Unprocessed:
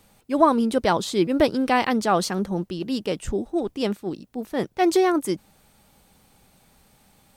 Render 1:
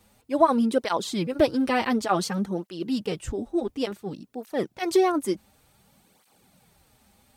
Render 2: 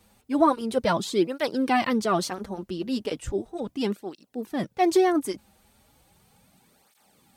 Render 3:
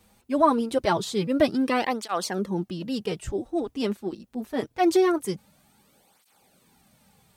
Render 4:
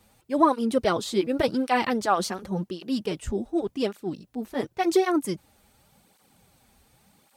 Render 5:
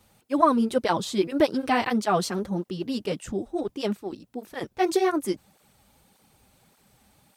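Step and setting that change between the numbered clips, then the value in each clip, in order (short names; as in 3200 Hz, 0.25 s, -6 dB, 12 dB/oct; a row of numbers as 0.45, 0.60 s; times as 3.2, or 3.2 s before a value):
tape flanging out of phase, nulls at: 0.56, 0.36, 0.24, 0.89, 1.7 Hz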